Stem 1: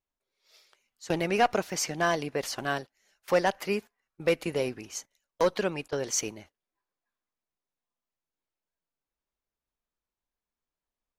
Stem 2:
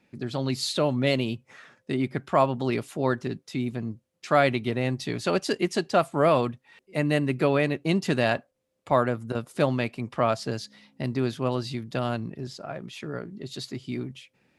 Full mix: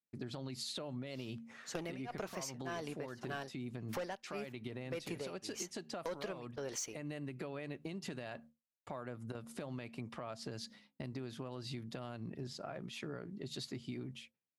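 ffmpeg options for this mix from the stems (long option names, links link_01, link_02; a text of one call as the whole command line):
ffmpeg -i stem1.wav -i stem2.wav -filter_complex "[0:a]tremolo=f=1.8:d=0.97,asoftclip=type=tanh:threshold=-22.5dB,adelay=650,volume=-0.5dB[link_01];[1:a]bandreject=frequency=76.61:width_type=h:width=4,bandreject=frequency=153.22:width_type=h:width=4,bandreject=frequency=229.83:width_type=h:width=4,acompressor=threshold=-28dB:ratio=6,alimiter=limit=-24dB:level=0:latency=1:release=150,volume=-5.5dB[link_02];[link_01][link_02]amix=inputs=2:normalize=0,agate=range=-33dB:threshold=-52dB:ratio=3:detection=peak,acompressor=threshold=-39dB:ratio=6" out.wav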